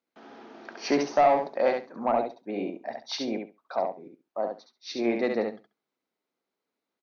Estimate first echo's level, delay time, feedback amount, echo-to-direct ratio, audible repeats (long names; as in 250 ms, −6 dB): −5.0 dB, 68 ms, 16%, −5.0 dB, 2